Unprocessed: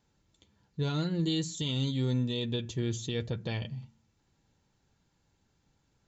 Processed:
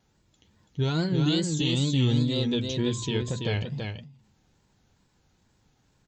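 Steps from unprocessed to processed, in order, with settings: 2.77–3.19 s: whistle 980 Hz -51 dBFS; wow and flutter 130 cents; on a send: delay 332 ms -4.5 dB; on the sum: endings held to a fixed fall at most 100 dB/s; trim +5 dB

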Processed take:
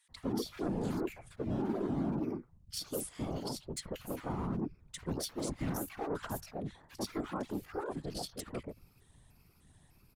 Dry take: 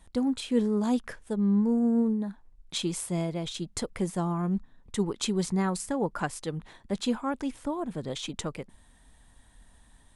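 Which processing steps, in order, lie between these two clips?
pitch shift switched off and on +5.5 st, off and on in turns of 300 ms; overload inside the chain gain 27.5 dB; bands offset in time highs, lows 90 ms, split 1.5 kHz; whisper effect; trim -5 dB

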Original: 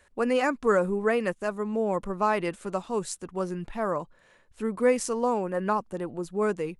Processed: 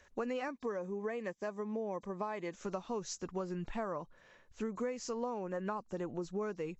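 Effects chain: knee-point frequency compression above 3.7 kHz 1.5:1; compression 12:1, threshold -32 dBFS, peak gain reduction 15.5 dB; 0.48–2.55 s: comb of notches 1.4 kHz; trim -2 dB

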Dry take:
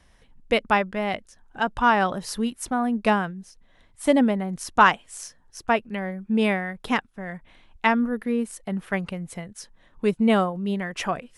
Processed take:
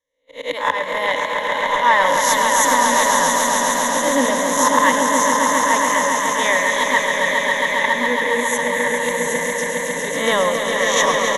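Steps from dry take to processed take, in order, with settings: reverse spectral sustain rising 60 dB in 0.66 s; gate -35 dBFS, range -34 dB; tone controls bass -14 dB, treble +7 dB; slow attack 181 ms; in parallel at -6.5 dB: saturation -16.5 dBFS, distortion -14 dB; on the sum: rippled EQ curve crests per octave 1.1, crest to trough 17 dB; resampled via 32 kHz; on a send: echo with a slow build-up 137 ms, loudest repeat 5, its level -6 dB; on the sum: modulated delay 104 ms, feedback 60%, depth 133 cents, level -12 dB

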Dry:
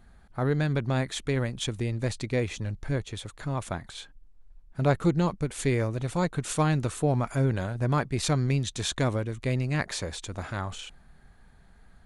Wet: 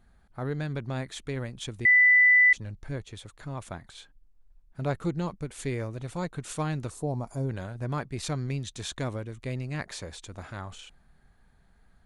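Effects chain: 1.85–2.53 s: bleep 1.99 kHz -9 dBFS; 6.90–7.49 s: high-order bell 2.1 kHz -12.5 dB; trim -6 dB

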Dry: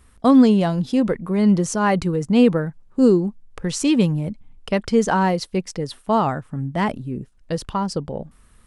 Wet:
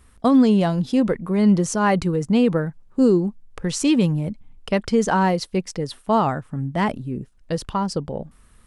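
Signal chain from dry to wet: loudness maximiser +7.5 dB; trim -7.5 dB

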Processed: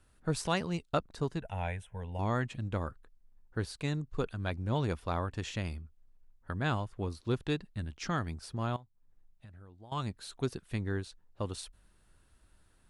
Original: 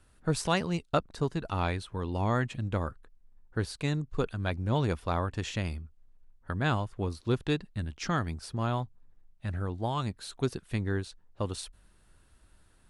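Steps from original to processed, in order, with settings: 1.40–2.19 s: static phaser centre 1.2 kHz, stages 6; 8.76–9.92 s: compression 4:1, threshold -50 dBFS, peak gain reduction 19 dB; trim -3.5 dB

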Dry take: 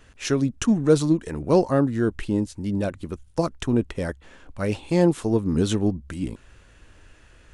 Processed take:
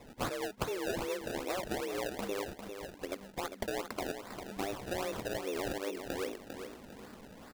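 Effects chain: saturation -19 dBFS, distortion -9 dB; frequency shift +190 Hz; tilt EQ +3 dB/octave; compression, threshold -34 dBFS, peak gain reduction 13 dB; 2.47–2.95 s: Chebyshev band-pass 1.4–7.4 kHz, order 5; decimation with a swept rate 28×, swing 100% 2.5 Hz; feedback delay 400 ms, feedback 29%, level -8 dB

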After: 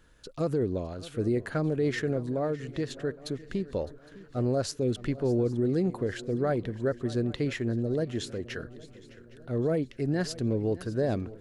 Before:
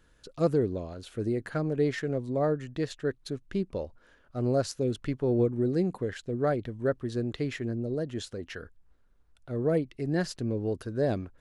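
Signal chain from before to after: 2.26–3.68 s: compression 2.5:1, threshold -31 dBFS, peak gain reduction 6 dB; peak limiter -22 dBFS, peak gain reduction 8 dB; on a send: shuffle delay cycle 812 ms, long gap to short 3:1, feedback 42%, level -18.5 dB; on the sum: trim +2.5 dB

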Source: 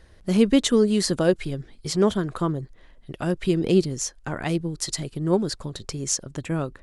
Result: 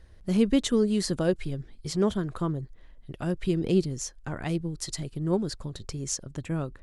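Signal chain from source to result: bass shelf 150 Hz +8 dB; trim -6.5 dB

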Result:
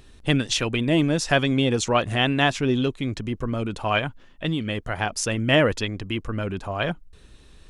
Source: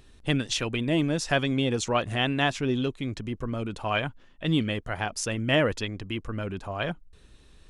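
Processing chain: 3.98–5.02 s: compression 10:1, threshold -26 dBFS, peak gain reduction 8 dB; trim +4.5 dB

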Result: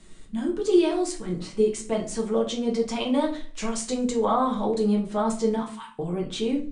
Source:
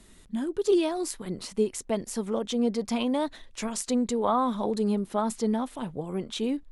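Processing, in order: Chebyshev low-pass 9.4 kHz, order 6; 1.12–1.57 s: treble shelf 5.3 kHz -10 dB; 5.59–5.99 s: steep high-pass 880 Hz 96 dB/octave; on a send: feedback echo behind a high-pass 69 ms, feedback 55%, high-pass 4.8 kHz, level -22 dB; on the sum: simulated room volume 33 m³, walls mixed, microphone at 0.58 m

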